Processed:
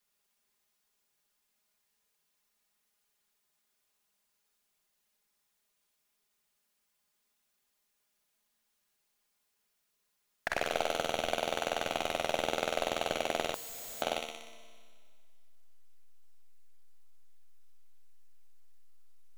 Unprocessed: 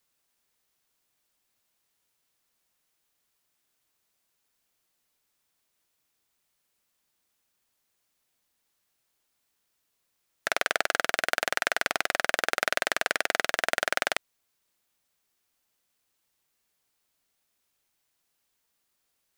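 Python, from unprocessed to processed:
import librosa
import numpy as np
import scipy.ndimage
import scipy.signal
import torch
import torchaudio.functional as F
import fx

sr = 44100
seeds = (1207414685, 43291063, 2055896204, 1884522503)

p1 = fx.hum_notches(x, sr, base_hz=60, count=8)
p2 = fx.backlash(p1, sr, play_db=-21.5)
p3 = p1 + F.gain(torch.from_numpy(p2), -10.0).numpy()
p4 = fx.env_flanger(p3, sr, rest_ms=4.9, full_db=-24.0)
p5 = p4 + fx.echo_feedback(p4, sr, ms=61, feedback_pct=53, wet_db=-7.5, dry=0)
p6 = fx.rev_schroeder(p5, sr, rt60_s=2.0, comb_ms=27, drr_db=18.0)
p7 = fx.resample_bad(p6, sr, factor=6, down='none', up='zero_stuff', at=(13.54, 14.02))
y = fx.slew_limit(p7, sr, full_power_hz=120.0)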